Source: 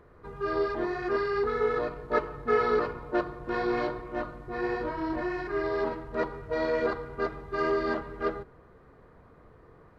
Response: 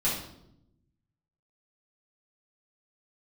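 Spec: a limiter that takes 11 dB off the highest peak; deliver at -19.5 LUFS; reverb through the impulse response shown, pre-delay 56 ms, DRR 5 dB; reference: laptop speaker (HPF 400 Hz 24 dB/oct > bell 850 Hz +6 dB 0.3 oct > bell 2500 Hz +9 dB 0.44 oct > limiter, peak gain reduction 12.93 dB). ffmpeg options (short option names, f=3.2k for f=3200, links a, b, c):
-filter_complex "[0:a]alimiter=level_in=1dB:limit=-24dB:level=0:latency=1,volume=-1dB,asplit=2[a][b];[1:a]atrim=start_sample=2205,adelay=56[c];[b][c]afir=irnorm=-1:irlink=0,volume=-14.5dB[d];[a][d]amix=inputs=2:normalize=0,highpass=f=400:w=0.5412,highpass=f=400:w=1.3066,equalizer=f=850:t=o:w=0.3:g=6,equalizer=f=2.5k:t=o:w=0.44:g=9,volume=22.5dB,alimiter=limit=-11.5dB:level=0:latency=1"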